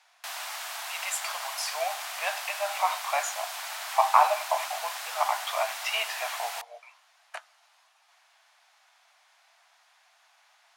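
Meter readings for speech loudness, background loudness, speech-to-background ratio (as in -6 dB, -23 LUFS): -29.5 LUFS, -35.0 LUFS, 5.5 dB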